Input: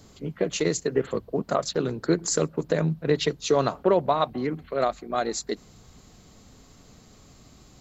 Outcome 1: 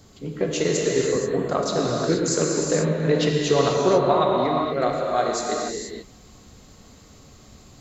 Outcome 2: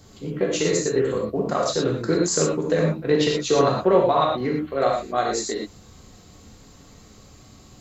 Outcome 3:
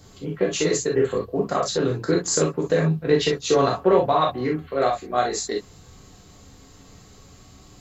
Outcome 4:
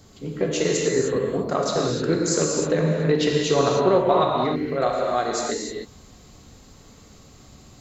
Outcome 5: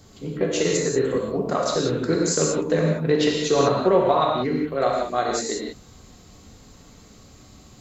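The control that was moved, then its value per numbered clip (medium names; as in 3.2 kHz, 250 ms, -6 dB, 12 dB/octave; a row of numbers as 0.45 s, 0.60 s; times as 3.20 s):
gated-style reverb, gate: 510 ms, 140 ms, 80 ms, 330 ms, 210 ms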